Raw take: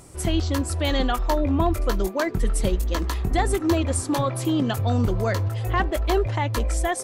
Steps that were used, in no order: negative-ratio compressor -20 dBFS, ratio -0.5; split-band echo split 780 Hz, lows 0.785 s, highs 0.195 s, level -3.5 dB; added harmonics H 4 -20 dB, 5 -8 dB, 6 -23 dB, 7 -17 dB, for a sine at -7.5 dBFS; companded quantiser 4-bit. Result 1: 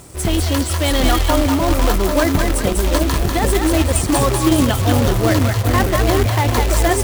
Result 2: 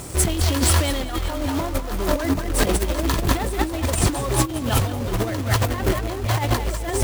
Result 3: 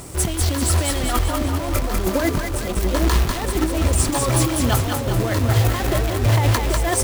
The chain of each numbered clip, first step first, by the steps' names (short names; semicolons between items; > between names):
negative-ratio compressor > added harmonics > split-band echo > companded quantiser; added harmonics > companded quantiser > split-band echo > negative-ratio compressor; added harmonics > negative-ratio compressor > companded quantiser > split-band echo